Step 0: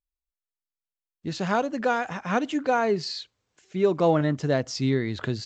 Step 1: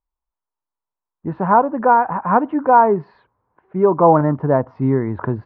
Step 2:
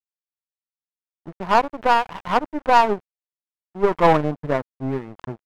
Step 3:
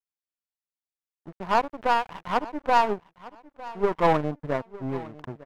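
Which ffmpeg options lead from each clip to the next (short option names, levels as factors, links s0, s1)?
-af "lowpass=f=1400:w=0.5412,lowpass=f=1400:w=1.3066,equalizer=f=950:w=2.9:g=12.5,volume=2.11"
-af "aeval=exprs='0.891*(cos(1*acos(clip(val(0)/0.891,-1,1)))-cos(1*PI/2))+0.126*(cos(2*acos(clip(val(0)/0.891,-1,1)))-cos(2*PI/2))+0.0708*(cos(3*acos(clip(val(0)/0.891,-1,1)))-cos(3*PI/2))+0.0355*(cos(6*acos(clip(val(0)/0.891,-1,1)))-cos(6*PI/2))+0.0355*(cos(7*acos(clip(val(0)/0.891,-1,1)))-cos(7*PI/2))':c=same,aeval=exprs='sgn(val(0))*max(abs(val(0))-0.0282,0)':c=same,volume=0.841"
-af "aecho=1:1:905|1810:0.119|0.0285,volume=0.531"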